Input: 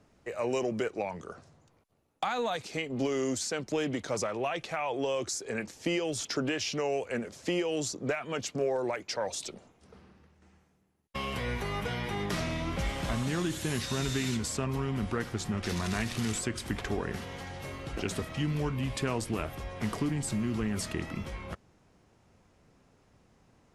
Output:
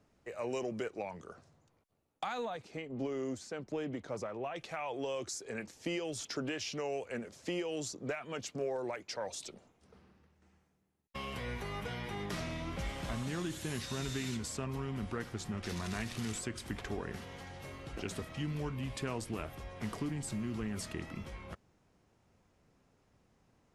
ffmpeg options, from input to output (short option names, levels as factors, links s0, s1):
-filter_complex "[0:a]asettb=1/sr,asplit=3[s0][s1][s2];[s0]atrim=end=2.454[s3];[s1]atrim=start=2.45:end=4.56,asetpts=PTS-STARTPTS,afade=t=in:d=0.004:c=qsin,afade=t=out:st=2.106:d=0.004:c=qsin,highshelf=f=2500:g=-11.5[s4];[s2]atrim=start=4.556[s5];[s3][s4]acrossfade=d=0.004:c1=hsin:c2=qsin[s6];[s6][s5]acrossfade=d=0.004:c1=qsin:c2=hsin,volume=0.473"